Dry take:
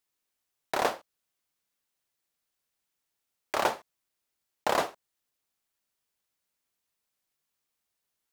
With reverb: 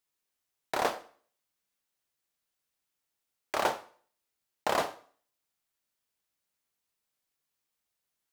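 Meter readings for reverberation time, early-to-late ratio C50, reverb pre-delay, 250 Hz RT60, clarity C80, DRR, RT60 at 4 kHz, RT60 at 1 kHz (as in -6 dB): 0.50 s, 16.0 dB, 6 ms, 0.50 s, 20.0 dB, 11.0 dB, 0.45 s, 0.50 s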